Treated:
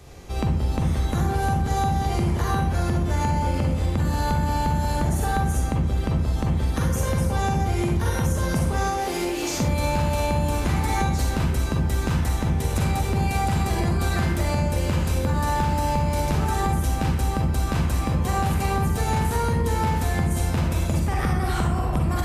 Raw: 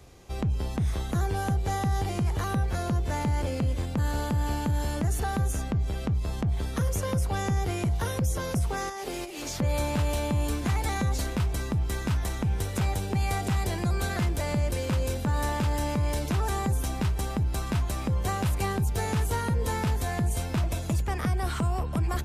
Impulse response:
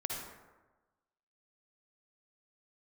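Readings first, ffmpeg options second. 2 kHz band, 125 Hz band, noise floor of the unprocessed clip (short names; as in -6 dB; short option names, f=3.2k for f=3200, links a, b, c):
+5.0 dB, +5.0 dB, -34 dBFS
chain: -filter_complex "[1:a]atrim=start_sample=2205,asetrate=57330,aresample=44100[a];[0:a][a]afir=irnorm=-1:irlink=0,acompressor=threshold=-27dB:ratio=6,volume=8.5dB"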